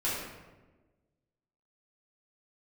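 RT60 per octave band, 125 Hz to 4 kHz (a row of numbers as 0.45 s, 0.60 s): 1.6 s, 1.6 s, 1.4 s, 1.1 s, 0.95 s, 0.75 s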